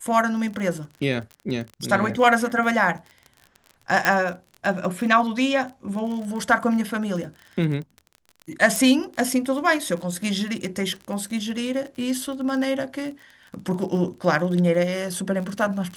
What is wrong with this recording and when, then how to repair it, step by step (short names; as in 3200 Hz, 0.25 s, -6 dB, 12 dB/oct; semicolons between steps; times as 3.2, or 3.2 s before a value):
crackle 35/s -31 dBFS
4.05 pop -5 dBFS
8.76 pop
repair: de-click